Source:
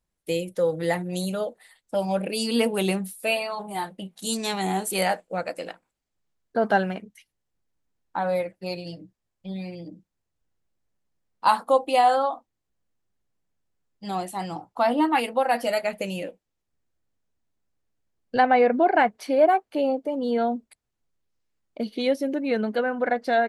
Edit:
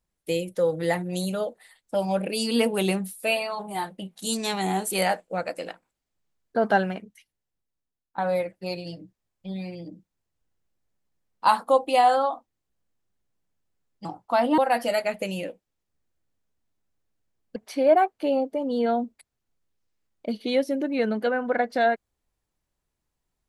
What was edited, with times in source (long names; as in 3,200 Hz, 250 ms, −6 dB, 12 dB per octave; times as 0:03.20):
0:06.80–0:08.18: fade out, to −18 dB
0:14.05–0:14.52: remove
0:15.05–0:15.37: remove
0:18.35–0:19.08: remove